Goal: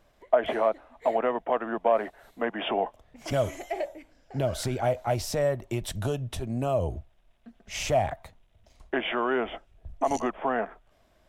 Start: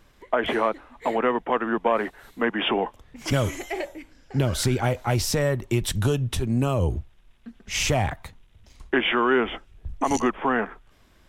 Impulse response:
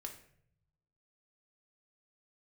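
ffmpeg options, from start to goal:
-af "equalizer=f=650:t=o:w=0.53:g=13,volume=0.398"

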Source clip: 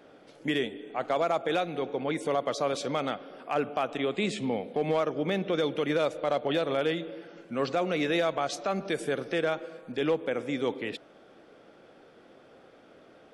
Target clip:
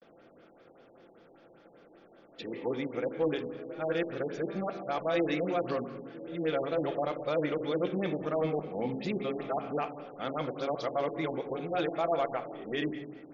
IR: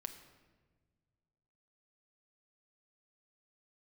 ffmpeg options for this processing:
-filter_complex "[0:a]areverse[s0];[1:a]atrim=start_sample=2205[s1];[s0][s1]afir=irnorm=-1:irlink=0,afftfilt=real='re*lt(b*sr/1024,940*pow(7300/940,0.5+0.5*sin(2*PI*5.1*pts/sr)))':imag='im*lt(b*sr/1024,940*pow(7300/940,0.5+0.5*sin(2*PI*5.1*pts/sr)))':win_size=1024:overlap=0.75"

